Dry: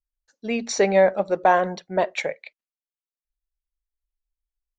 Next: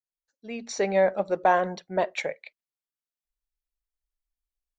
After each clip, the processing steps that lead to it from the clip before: opening faded in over 1.18 s; gain -3.5 dB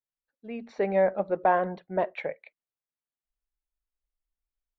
air absorption 480 m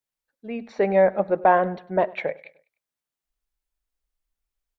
feedback echo 0.1 s, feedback 47%, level -22 dB; gain +5.5 dB

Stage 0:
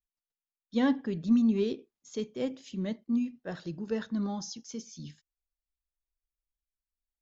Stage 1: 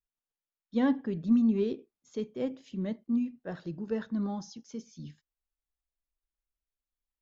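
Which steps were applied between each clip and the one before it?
high shelf 3200 Hz -11.5 dB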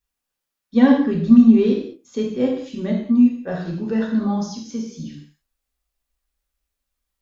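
non-linear reverb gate 0.24 s falling, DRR -3 dB; gain +8 dB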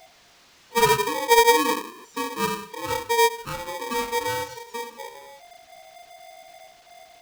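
delta modulation 32 kbps, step -31 dBFS; spectral noise reduction 11 dB; polarity switched at an audio rate 700 Hz; gain -6 dB

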